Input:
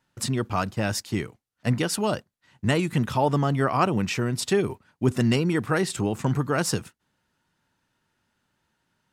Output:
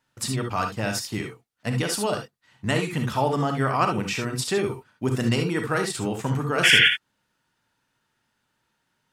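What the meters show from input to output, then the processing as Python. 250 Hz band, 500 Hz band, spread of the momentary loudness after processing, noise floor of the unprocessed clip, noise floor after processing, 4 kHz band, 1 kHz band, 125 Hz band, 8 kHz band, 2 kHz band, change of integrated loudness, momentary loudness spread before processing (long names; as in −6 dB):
−2.5 dB, −0.5 dB, 13 LU, −77 dBFS, −75 dBFS, +9.5 dB, +1.0 dB, −1.5 dB, +1.5 dB, +8.0 dB, +1.5 dB, 8 LU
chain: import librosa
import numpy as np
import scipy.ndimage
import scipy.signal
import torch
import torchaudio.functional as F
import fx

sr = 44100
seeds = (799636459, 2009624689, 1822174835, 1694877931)

y = fx.low_shelf(x, sr, hz=370.0, db=-5.5)
y = fx.spec_paint(y, sr, seeds[0], shape='noise', start_s=6.63, length_s=0.26, low_hz=1400.0, high_hz=3500.0, level_db=-17.0)
y = fx.rev_gated(y, sr, seeds[1], gate_ms=90, shape='rising', drr_db=4.0)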